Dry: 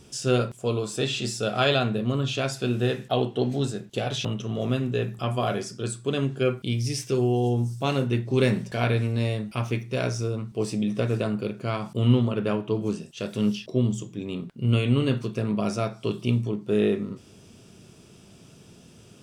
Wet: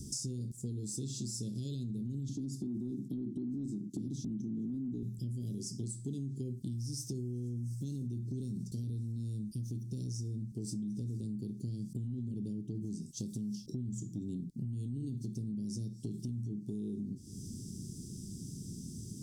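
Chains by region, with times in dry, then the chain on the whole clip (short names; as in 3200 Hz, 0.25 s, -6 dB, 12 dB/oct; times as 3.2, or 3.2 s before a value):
2.29–5.03 HPF 150 Hz 24 dB/oct + resonant low shelf 450 Hz +12.5 dB, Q 3 + upward expander, over -19 dBFS
whole clip: inverse Chebyshev band-stop 830–2000 Hz, stop band 70 dB; limiter -25.5 dBFS; compressor, threshold -45 dBFS; gain +8 dB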